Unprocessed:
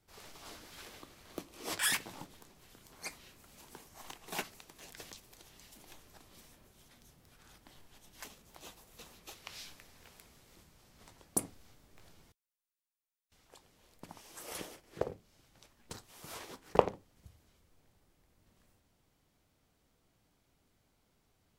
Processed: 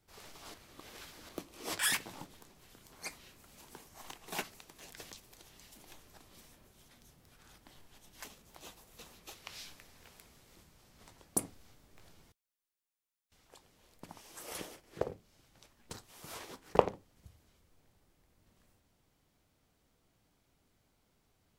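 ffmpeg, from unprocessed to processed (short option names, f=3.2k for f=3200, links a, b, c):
-filter_complex "[0:a]asplit=3[a][b][c];[a]atrim=end=0.542[d];[b]atrim=start=0.538:end=1.292,asetpts=PTS-STARTPTS,areverse[e];[c]atrim=start=1.288[f];[d][e]acrossfade=d=0.004:c1=hsin:c2=hsin[g];[g][f]acrossfade=d=0.004:c1=hsin:c2=hsin"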